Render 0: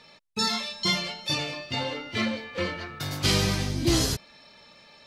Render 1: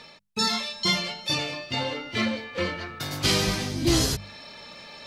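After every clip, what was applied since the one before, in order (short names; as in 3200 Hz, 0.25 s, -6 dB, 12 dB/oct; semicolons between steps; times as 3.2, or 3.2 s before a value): notches 50/100/150/200 Hz; reverse; upward compressor, threshold -36 dBFS; reverse; gain +1.5 dB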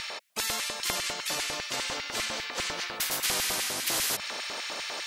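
low shelf 98 Hz -8 dB; LFO high-pass square 5 Hz 600–2100 Hz; spectral compressor 4:1; gain -5 dB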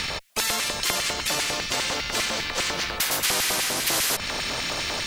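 in parallel at -11.5 dB: Schmitt trigger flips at -30.5 dBFS; on the sum: three-band squash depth 40%; gain +4.5 dB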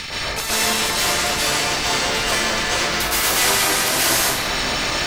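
plate-style reverb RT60 1.2 s, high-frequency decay 0.55×, pre-delay 0.11 s, DRR -8.5 dB; gain -1.5 dB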